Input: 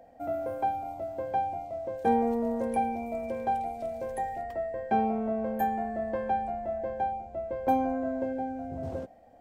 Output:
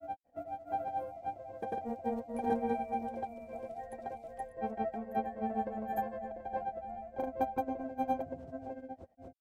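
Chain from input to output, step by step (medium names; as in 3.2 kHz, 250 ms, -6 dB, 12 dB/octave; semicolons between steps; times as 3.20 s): granulator 103 ms, grains 30 per s, spray 635 ms, pitch spread up and down by 0 st; upward expansion 1.5:1, over -42 dBFS; trim -1 dB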